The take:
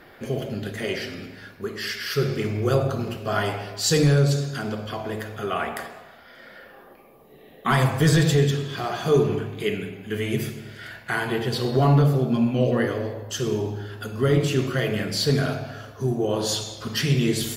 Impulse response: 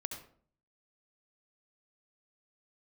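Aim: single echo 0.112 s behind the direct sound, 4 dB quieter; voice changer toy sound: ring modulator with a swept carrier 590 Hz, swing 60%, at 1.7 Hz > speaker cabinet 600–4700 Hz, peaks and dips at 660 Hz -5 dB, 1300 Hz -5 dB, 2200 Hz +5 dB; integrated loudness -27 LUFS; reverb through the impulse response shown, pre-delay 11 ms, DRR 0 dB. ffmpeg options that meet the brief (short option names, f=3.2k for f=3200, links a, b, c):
-filter_complex "[0:a]aecho=1:1:112:0.631,asplit=2[a][b];[1:a]atrim=start_sample=2205,adelay=11[c];[b][c]afir=irnorm=-1:irlink=0,volume=0.5dB[d];[a][d]amix=inputs=2:normalize=0,aeval=exprs='val(0)*sin(2*PI*590*n/s+590*0.6/1.7*sin(2*PI*1.7*n/s))':c=same,highpass=600,equalizer=f=660:t=q:w=4:g=-5,equalizer=f=1.3k:t=q:w=4:g=-5,equalizer=f=2.2k:t=q:w=4:g=5,lowpass=f=4.7k:w=0.5412,lowpass=f=4.7k:w=1.3066,volume=-1dB"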